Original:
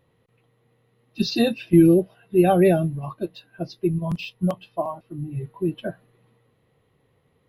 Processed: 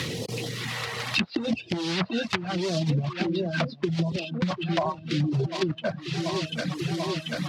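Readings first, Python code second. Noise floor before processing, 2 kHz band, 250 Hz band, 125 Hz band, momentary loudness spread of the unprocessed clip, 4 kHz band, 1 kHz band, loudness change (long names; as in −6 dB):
−66 dBFS, +6.0 dB, −6.5 dB, −1.5 dB, 17 LU, +5.0 dB, −3.0 dB, −6.0 dB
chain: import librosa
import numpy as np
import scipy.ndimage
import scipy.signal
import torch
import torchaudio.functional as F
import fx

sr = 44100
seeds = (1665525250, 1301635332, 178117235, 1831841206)

p1 = fx.block_float(x, sr, bits=3)
p2 = fx.transient(p1, sr, attack_db=-4, sustain_db=1)
p3 = fx.peak_eq(p2, sr, hz=4700.0, db=12.5, octaves=1.5)
p4 = fx.phaser_stages(p3, sr, stages=2, low_hz=270.0, high_hz=1400.0, hz=0.79, feedback_pct=30)
p5 = fx.echo_filtered(p4, sr, ms=738, feedback_pct=72, hz=4300.0, wet_db=-20)
p6 = fx.fold_sine(p5, sr, drive_db=12, ceiling_db=-3.5)
p7 = p5 + (p6 * 10.0 ** (-8.5 / 20.0))
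p8 = fx.over_compress(p7, sr, threshold_db=-17.0, ratio=-0.5)
p9 = scipy.signal.sosfilt(scipy.signal.butter(4, 77.0, 'highpass', fs=sr, output='sos'), p8)
p10 = fx.low_shelf(p9, sr, hz=180.0, db=-8.5)
p11 = fx.env_lowpass_down(p10, sr, base_hz=800.0, full_db=-16.5)
p12 = fx.dereverb_blind(p11, sr, rt60_s=0.61)
y = fx.band_squash(p12, sr, depth_pct=100)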